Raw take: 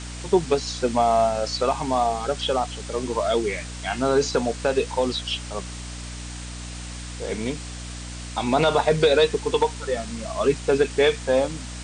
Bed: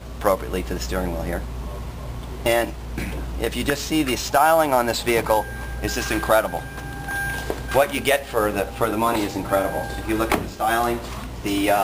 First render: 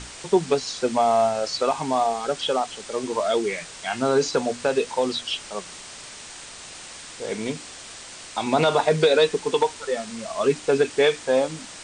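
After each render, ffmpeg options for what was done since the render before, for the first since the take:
-af "bandreject=f=60:t=h:w=6,bandreject=f=120:t=h:w=6,bandreject=f=180:t=h:w=6,bandreject=f=240:t=h:w=6,bandreject=f=300:t=h:w=6"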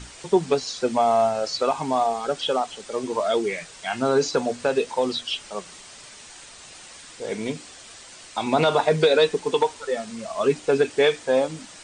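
-af "afftdn=nr=6:nf=-41"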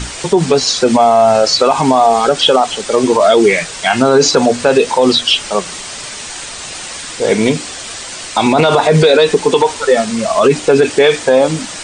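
-af "alimiter=level_in=7.5:limit=0.891:release=50:level=0:latency=1"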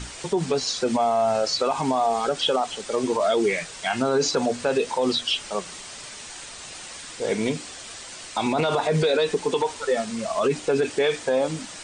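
-af "volume=0.237"

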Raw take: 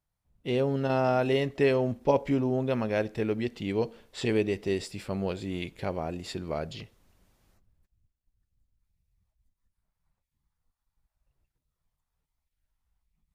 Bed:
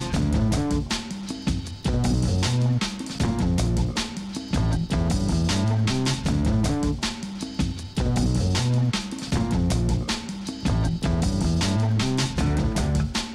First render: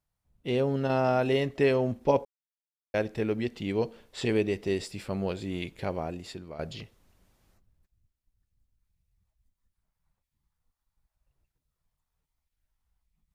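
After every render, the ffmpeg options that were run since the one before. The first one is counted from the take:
-filter_complex "[0:a]asplit=4[s0][s1][s2][s3];[s0]atrim=end=2.25,asetpts=PTS-STARTPTS,afade=t=out:st=2.246:d=0.004:c=hsin[s4];[s1]atrim=start=2.25:end=2.94,asetpts=PTS-STARTPTS,volume=0[s5];[s2]atrim=start=2.94:end=6.59,asetpts=PTS-STARTPTS,afade=t=in:d=0.004:c=hsin,afade=t=out:st=3.06:d=0.59:silence=0.237137[s6];[s3]atrim=start=6.59,asetpts=PTS-STARTPTS,afade=t=in:d=0.004:c=hsin:silence=0.237137[s7];[s4][s5][s6][s7]concat=n=4:v=0:a=1"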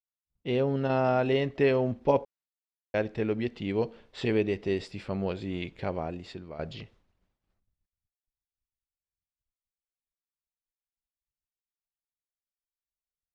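-af "lowpass=4200,agate=range=0.0224:threshold=0.00178:ratio=3:detection=peak"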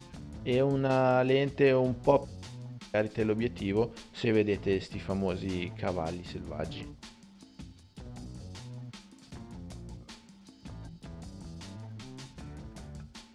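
-filter_complex "[1:a]volume=0.0794[s0];[0:a][s0]amix=inputs=2:normalize=0"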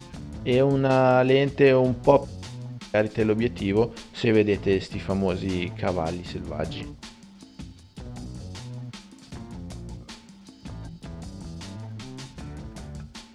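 -af "volume=2.11"

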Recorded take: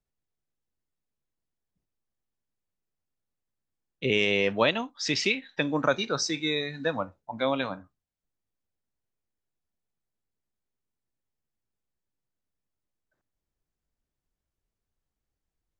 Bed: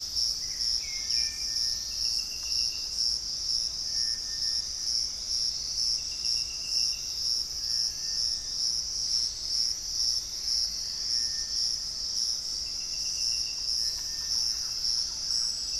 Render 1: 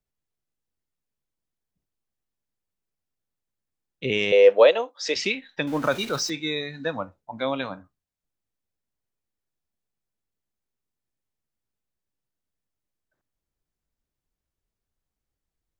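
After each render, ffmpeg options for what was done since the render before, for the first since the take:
-filter_complex "[0:a]asettb=1/sr,asplit=3[s0][s1][s2];[s0]atrim=end=4.324[s3];[s1]atrim=start=4.32:end=5.16,asetpts=PTS-STARTPTS,afade=t=in:d=0.004:c=qsin,afade=t=out:st=0.836:d=0.004:c=qsin,highpass=f=500:t=q:w=6.1[s4];[s2]atrim=start=5.156[s5];[s3][s4]acrossfade=d=0.004:c1=hsin:c2=qsin[s6];[s6][s5]acrossfade=d=0.004:c1=qsin:c2=hsin,asettb=1/sr,asplit=3[s7][s8][s9];[s7]atrim=end=5.674[s10];[s8]atrim=start=5.67:end=6.3,asetpts=PTS-STARTPTS,afade=t=in:d=0.004:c=qsin,afade=t=out:st=0.626:d=0.004:c=qsin,aeval=exprs='val(0)+0.5*0.02*sgn(val(0))':c=same[s11];[s9]atrim=start=6.296[s12];[s10][s11]acrossfade=d=0.004:c1=hsin:c2=qsin[s13];[s13][s12]acrossfade=d=0.004:c1=qsin:c2=hsin"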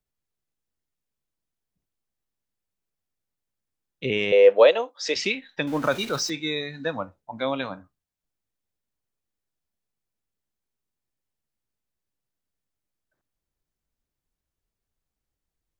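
-filter_complex "[0:a]asettb=1/sr,asplit=3[s0][s1][s2];[s0]atrim=end=4.094[s3];[s1]atrim=start=4.09:end=4.56,asetpts=PTS-STARTPTS,afade=t=in:d=0.004:c=qsin,afade=t=out:st=0.466:d=0.004:c=qsin,equalizer=f=6000:t=o:w=1.2:g=-8[s4];[s2]atrim=start=4.556[s5];[s3][s4]acrossfade=d=0.004:c1=hsin:c2=qsin[s6];[s6][s5]acrossfade=d=0.004:c1=qsin:c2=hsin"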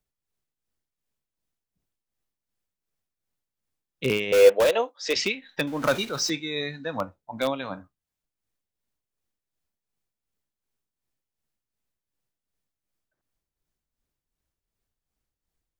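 -filter_complex "[0:a]tremolo=f=2.7:d=0.57,asplit=2[s0][s1];[s1]aeval=exprs='(mod(6.68*val(0)+1,2)-1)/6.68':c=same,volume=0.335[s2];[s0][s2]amix=inputs=2:normalize=0"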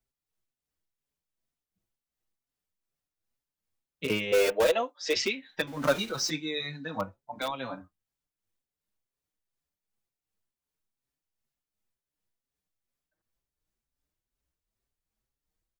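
-filter_complex "[0:a]asplit=2[s0][s1];[s1]adelay=5.6,afreqshift=2.1[s2];[s0][s2]amix=inputs=2:normalize=1"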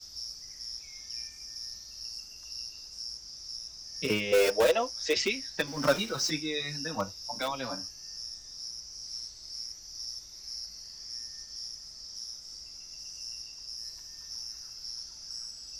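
-filter_complex "[1:a]volume=0.251[s0];[0:a][s0]amix=inputs=2:normalize=0"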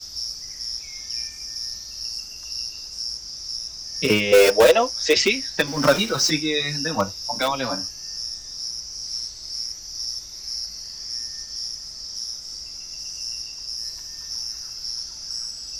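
-af "volume=3.16,alimiter=limit=0.708:level=0:latency=1"

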